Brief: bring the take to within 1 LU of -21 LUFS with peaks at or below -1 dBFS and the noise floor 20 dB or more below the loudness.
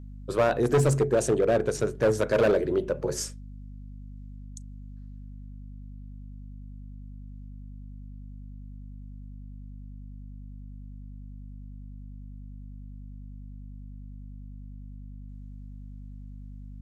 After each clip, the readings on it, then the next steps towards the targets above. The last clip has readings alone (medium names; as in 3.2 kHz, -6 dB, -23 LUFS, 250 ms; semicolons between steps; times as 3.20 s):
clipped samples 0.7%; clipping level -16.5 dBFS; hum 50 Hz; highest harmonic 250 Hz; hum level -39 dBFS; loudness -25.0 LUFS; peak level -16.5 dBFS; loudness target -21.0 LUFS
-> clip repair -16.5 dBFS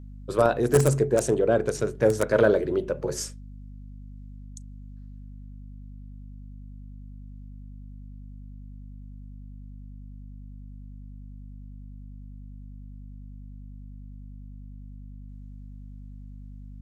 clipped samples 0.0%; hum 50 Hz; highest harmonic 250 Hz; hum level -39 dBFS
-> hum notches 50/100/150/200/250 Hz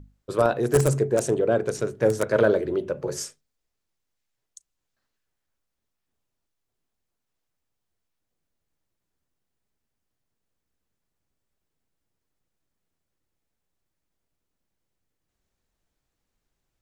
hum not found; loudness -23.5 LUFS; peak level -7.0 dBFS; loudness target -21.0 LUFS
-> trim +2.5 dB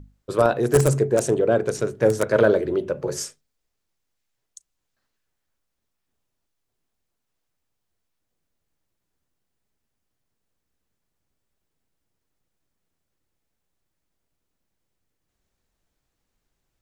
loudness -21.0 LUFS; peak level -4.5 dBFS; noise floor -79 dBFS